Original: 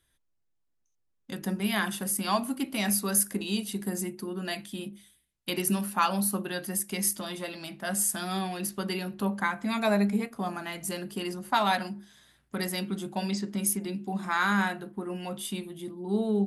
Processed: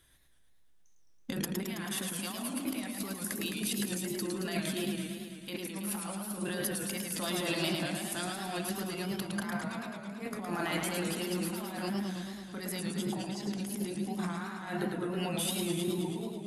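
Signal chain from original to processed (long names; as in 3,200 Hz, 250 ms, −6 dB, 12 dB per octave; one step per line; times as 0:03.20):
compressor whose output falls as the input rises −39 dBFS, ratio −1
feedback echo with a swinging delay time 109 ms, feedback 72%, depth 154 cents, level −4.5 dB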